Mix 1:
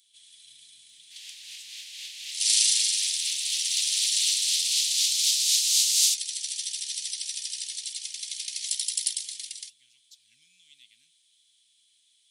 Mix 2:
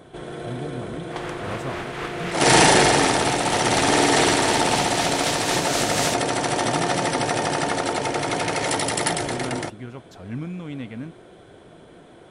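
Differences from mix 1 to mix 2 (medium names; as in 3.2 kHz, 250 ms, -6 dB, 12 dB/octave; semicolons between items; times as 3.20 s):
second sound -7.0 dB; master: remove inverse Chebyshev high-pass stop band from 1.4 kHz, stop band 50 dB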